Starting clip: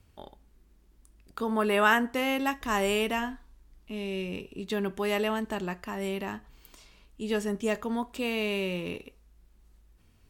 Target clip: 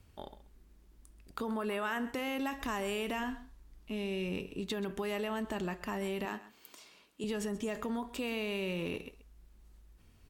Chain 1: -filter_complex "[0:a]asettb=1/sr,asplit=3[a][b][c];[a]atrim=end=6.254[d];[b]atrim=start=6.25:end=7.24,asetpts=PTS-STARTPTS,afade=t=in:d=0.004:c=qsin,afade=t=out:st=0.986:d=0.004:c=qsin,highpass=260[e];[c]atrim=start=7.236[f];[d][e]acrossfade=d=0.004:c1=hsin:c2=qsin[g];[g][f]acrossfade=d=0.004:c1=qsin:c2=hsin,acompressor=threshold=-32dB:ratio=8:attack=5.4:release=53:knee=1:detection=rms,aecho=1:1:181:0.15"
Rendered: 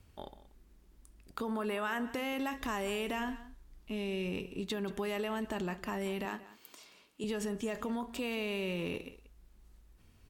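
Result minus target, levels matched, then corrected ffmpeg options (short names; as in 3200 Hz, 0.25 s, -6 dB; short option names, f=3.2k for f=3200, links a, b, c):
echo 50 ms late
-filter_complex "[0:a]asettb=1/sr,asplit=3[a][b][c];[a]atrim=end=6.254[d];[b]atrim=start=6.25:end=7.24,asetpts=PTS-STARTPTS,afade=t=in:d=0.004:c=qsin,afade=t=out:st=0.986:d=0.004:c=qsin,highpass=260[e];[c]atrim=start=7.236[f];[d][e]acrossfade=d=0.004:c1=hsin:c2=qsin[g];[g][f]acrossfade=d=0.004:c1=qsin:c2=hsin,acompressor=threshold=-32dB:ratio=8:attack=5.4:release=53:knee=1:detection=rms,aecho=1:1:131:0.15"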